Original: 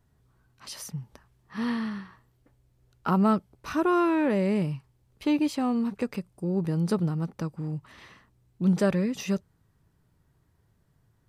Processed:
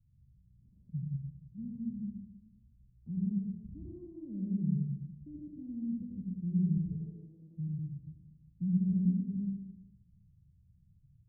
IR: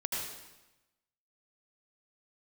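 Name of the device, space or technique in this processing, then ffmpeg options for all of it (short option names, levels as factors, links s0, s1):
club heard from the street: -filter_complex "[0:a]asettb=1/sr,asplit=3[s0][s1][s2];[s0]atrim=end=6.774[s3];[s1]atrim=start=6.77:end=7.56,asetpts=PTS-STARTPTS,afade=t=in:d=0.004:c=qsin,afade=t=out:st=0.786:d=0.004:c=qsin,highpass=f=380:w=0.5412,highpass=f=380:w=1.3066[s4];[s2]atrim=start=7.556[s5];[s3][s4]acrossfade=d=0.004:c1=hsin:c2=qsin[s6];[s6][s5]acrossfade=d=0.004:c1=qsin:c2=hsin,alimiter=limit=0.0891:level=0:latency=1:release=238,lowpass=f=170:w=0.5412,lowpass=f=170:w=1.3066[s7];[1:a]atrim=start_sample=2205[s8];[s7][s8]afir=irnorm=-1:irlink=0"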